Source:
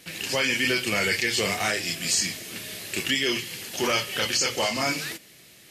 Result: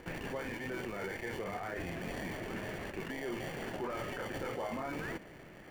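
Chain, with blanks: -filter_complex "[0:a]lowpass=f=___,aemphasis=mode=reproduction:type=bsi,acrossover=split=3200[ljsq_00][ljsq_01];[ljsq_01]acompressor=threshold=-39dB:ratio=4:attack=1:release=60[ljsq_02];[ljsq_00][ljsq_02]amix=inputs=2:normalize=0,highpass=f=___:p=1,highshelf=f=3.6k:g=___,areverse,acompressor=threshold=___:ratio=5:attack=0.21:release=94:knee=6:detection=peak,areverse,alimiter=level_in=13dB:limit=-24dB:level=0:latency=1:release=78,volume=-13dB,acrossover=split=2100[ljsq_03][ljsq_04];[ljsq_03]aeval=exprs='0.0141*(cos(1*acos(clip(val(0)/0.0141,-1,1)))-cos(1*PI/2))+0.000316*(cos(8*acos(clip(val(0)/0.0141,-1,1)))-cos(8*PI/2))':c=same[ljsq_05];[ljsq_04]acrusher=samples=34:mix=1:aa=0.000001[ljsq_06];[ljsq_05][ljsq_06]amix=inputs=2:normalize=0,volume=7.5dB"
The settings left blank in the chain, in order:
7.1k, 590, -7, -38dB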